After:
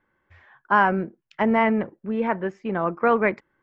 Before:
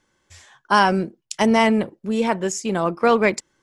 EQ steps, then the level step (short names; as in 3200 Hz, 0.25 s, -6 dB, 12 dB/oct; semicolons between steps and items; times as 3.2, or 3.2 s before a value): ladder low-pass 2300 Hz, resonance 30%; +3.0 dB